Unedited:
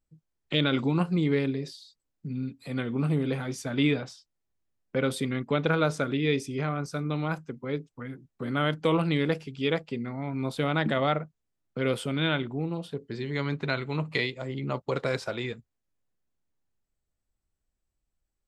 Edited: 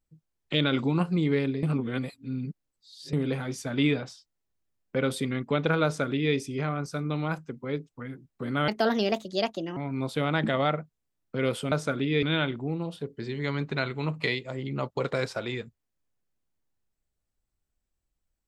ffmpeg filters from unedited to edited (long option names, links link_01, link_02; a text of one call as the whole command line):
ffmpeg -i in.wav -filter_complex "[0:a]asplit=7[link_01][link_02][link_03][link_04][link_05][link_06][link_07];[link_01]atrim=end=1.632[link_08];[link_02]atrim=start=1.628:end=3.132,asetpts=PTS-STARTPTS,areverse[link_09];[link_03]atrim=start=3.128:end=8.684[link_10];[link_04]atrim=start=8.68:end=10.19,asetpts=PTS-STARTPTS,asetrate=61299,aresample=44100,atrim=end_sample=47907,asetpts=PTS-STARTPTS[link_11];[link_05]atrim=start=10.186:end=12.142[link_12];[link_06]atrim=start=5.838:end=6.352[link_13];[link_07]atrim=start=12.138[link_14];[link_08][link_09]acrossfade=duration=0.004:curve1=hsin:curve2=hsin[link_15];[link_15][link_10]acrossfade=duration=0.004:curve1=hsin:curve2=hsin[link_16];[link_16][link_11]acrossfade=duration=0.004:curve1=hsin:curve2=hsin[link_17];[link_17][link_12]acrossfade=duration=0.004:curve1=hsin:curve2=hsin[link_18];[link_18][link_13]acrossfade=duration=0.004:curve1=hsin:curve2=hsin[link_19];[link_19][link_14]acrossfade=duration=0.004:curve1=hsin:curve2=hsin" out.wav